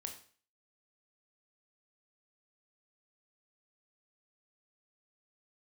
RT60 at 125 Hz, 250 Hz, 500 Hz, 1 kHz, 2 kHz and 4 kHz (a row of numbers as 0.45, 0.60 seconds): 0.45, 0.45, 0.45, 0.45, 0.45, 0.45 seconds